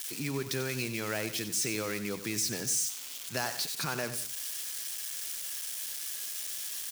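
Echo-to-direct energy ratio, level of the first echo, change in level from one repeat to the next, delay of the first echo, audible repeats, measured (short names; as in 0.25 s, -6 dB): -11.5 dB, -12.0 dB, -7.5 dB, 93 ms, 2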